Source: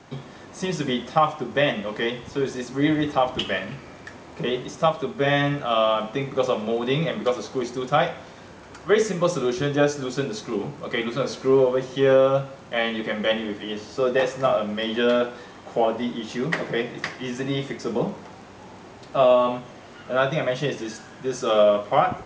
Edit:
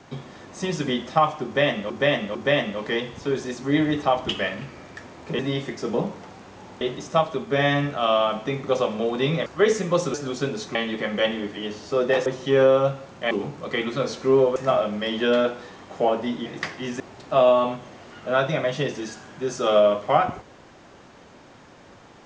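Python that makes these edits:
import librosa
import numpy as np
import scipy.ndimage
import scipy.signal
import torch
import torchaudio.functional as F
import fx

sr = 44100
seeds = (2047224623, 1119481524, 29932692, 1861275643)

y = fx.edit(x, sr, fx.repeat(start_s=1.45, length_s=0.45, count=3),
    fx.cut(start_s=7.14, length_s=1.62),
    fx.cut(start_s=9.44, length_s=0.46),
    fx.swap(start_s=10.51, length_s=1.25, other_s=12.81, other_length_s=1.51),
    fx.cut(start_s=16.22, length_s=0.65),
    fx.move(start_s=17.41, length_s=1.42, to_s=4.49), tone=tone)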